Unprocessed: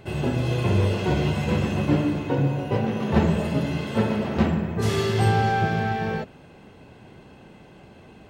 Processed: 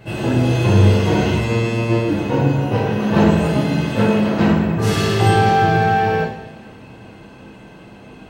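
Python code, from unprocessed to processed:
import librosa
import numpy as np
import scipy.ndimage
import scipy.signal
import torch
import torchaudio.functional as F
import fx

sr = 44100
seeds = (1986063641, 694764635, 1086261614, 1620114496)

y = fx.robotise(x, sr, hz=115.0, at=(1.36, 2.09))
y = fx.rev_double_slope(y, sr, seeds[0], early_s=0.57, late_s=2.4, knee_db=-18, drr_db=-7.0)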